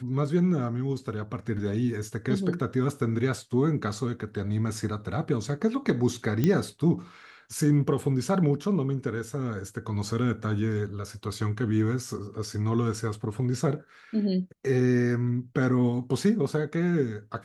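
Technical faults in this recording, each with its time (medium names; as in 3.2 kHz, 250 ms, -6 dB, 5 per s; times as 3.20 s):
6.44 s: pop -12 dBFS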